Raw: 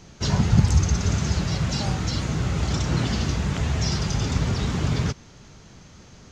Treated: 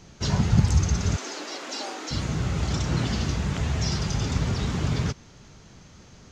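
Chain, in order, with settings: 1.16–2.11 s: elliptic high-pass 280 Hz, stop band 50 dB; trim -2 dB

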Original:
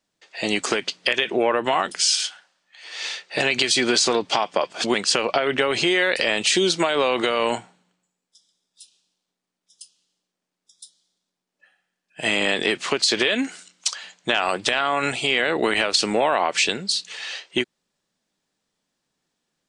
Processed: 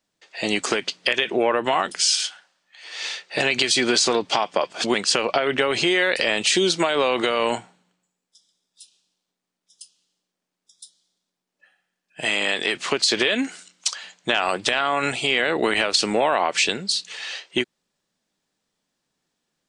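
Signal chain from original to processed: 12.25–12.75 s: bass shelf 460 Hz -8.5 dB

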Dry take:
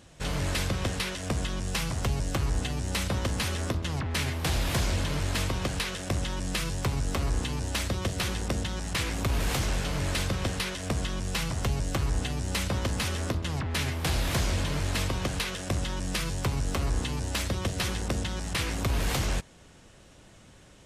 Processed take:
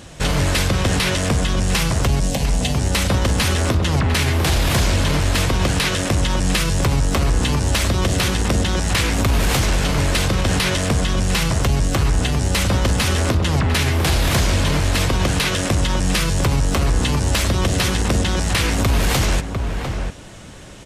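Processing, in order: 2.20–2.78 s: static phaser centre 350 Hz, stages 6; echo from a far wall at 120 m, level -10 dB; loudness maximiser +23 dB; trim -8.5 dB

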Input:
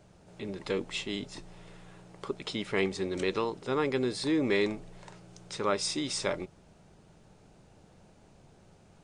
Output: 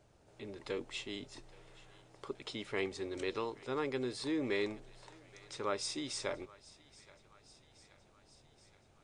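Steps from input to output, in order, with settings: peaking EQ 180 Hz -14.5 dB 0.25 oct; on a send: thinning echo 825 ms, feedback 69%, high-pass 920 Hz, level -19.5 dB; on the sum: trim -7 dB

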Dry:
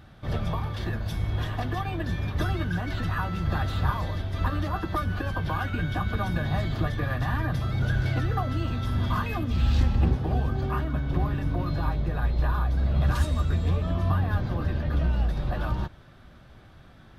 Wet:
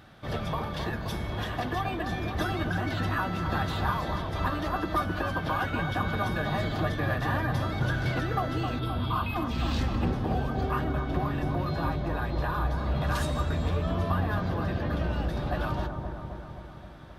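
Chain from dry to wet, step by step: bass shelf 140 Hz -12 dB; in parallel at -11.5 dB: saturation -27 dBFS, distortion -15 dB; 8.79–9.36 s: on the sum: static phaser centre 1.8 kHz, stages 6; feedback echo behind a low-pass 262 ms, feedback 65%, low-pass 1 kHz, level -4.5 dB

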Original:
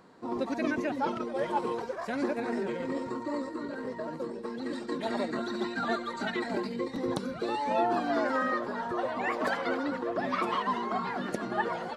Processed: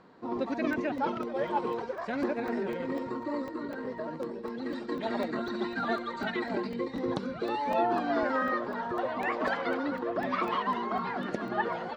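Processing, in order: low-pass 4.3 kHz 12 dB/octave; crackling interface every 0.25 s, samples 64, zero, from 0.73 s

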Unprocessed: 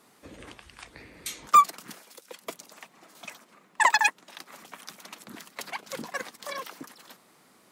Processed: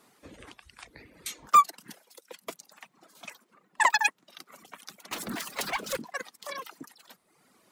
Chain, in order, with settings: 5.11–5.97 s: power-law waveshaper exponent 0.5; reverb removal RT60 0.99 s; trim -1.5 dB

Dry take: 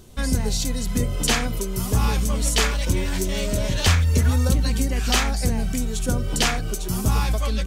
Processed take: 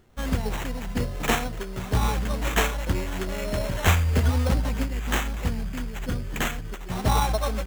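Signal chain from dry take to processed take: companded quantiser 6-bit; peaking EQ 770 Hz +5.5 dB 1.3 oct, from 4.84 s -6.5 dB, from 6.91 s +11.5 dB; sample-rate reducer 4.8 kHz, jitter 0%; upward expansion 1.5:1, over -34 dBFS; trim -1.5 dB

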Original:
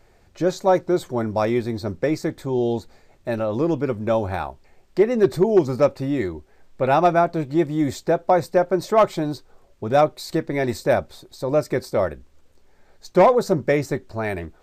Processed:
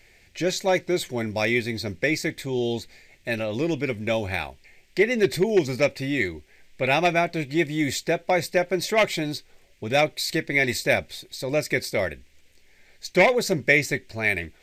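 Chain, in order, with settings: resonant high shelf 1.6 kHz +9.5 dB, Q 3; trim -3.5 dB

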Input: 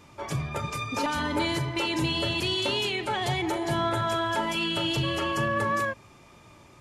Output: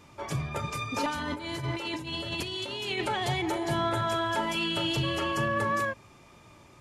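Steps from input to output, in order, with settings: 1.09–3.09 s: compressor with a negative ratio -31 dBFS, ratio -0.5; trim -1.5 dB

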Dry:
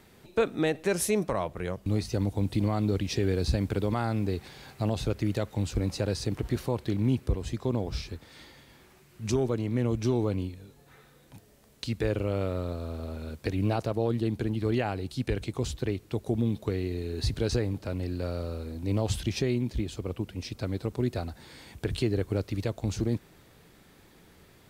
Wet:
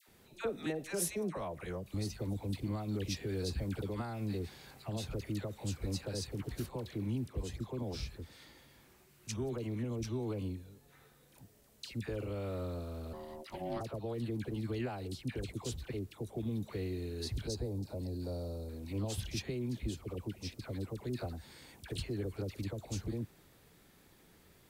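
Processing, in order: peak limiter -21 dBFS, peak gain reduction 5 dB; treble shelf 7.7 kHz +6.5 dB; phase dispersion lows, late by 81 ms, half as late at 1 kHz; 13.13–13.81 s: ring modulator 460 Hz; 17.47–18.69 s: high-order bell 1.9 kHz -12.5 dB; trim -7 dB

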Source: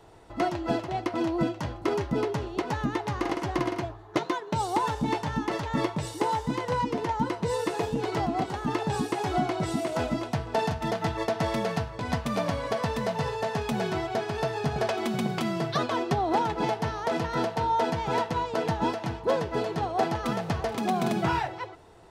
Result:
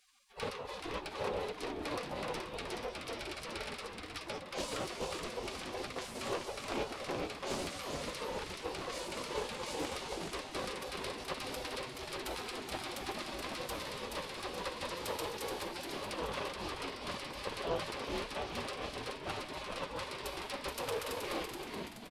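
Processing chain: in parallel at +1 dB: peak limiter -21 dBFS, peak gain reduction 8.5 dB; on the sum: high-pass 72 Hz 24 dB/octave; spectral gate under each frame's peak -25 dB weak; ten-band graphic EQ 125 Hz -5 dB, 250 Hz -5 dB, 500 Hz +9 dB, 2 kHz -10 dB, 4 kHz -6 dB, 8 kHz -10 dB; Chebyshev shaper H 4 -20 dB, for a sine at -25.5 dBFS; formant shift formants -3 st; on a send: frequency-shifting echo 426 ms, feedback 48%, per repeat -130 Hz, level -4.5 dB; on the sum: loudspeaker Doppler distortion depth 0.28 ms; trim +3.5 dB

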